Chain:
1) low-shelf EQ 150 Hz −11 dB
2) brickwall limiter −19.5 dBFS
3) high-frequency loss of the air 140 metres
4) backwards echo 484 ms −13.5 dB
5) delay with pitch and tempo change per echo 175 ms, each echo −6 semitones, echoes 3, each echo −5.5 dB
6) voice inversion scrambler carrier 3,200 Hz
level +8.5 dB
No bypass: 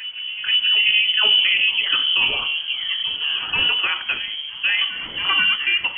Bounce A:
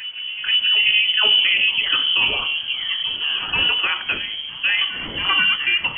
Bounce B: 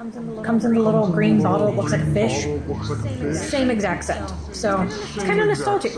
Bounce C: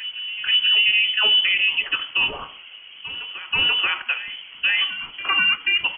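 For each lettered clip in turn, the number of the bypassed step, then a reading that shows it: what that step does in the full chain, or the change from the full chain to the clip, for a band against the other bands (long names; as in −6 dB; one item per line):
3, 250 Hz band +2.5 dB
6, 2 kHz band −32.0 dB
5, change in momentary loudness spread +7 LU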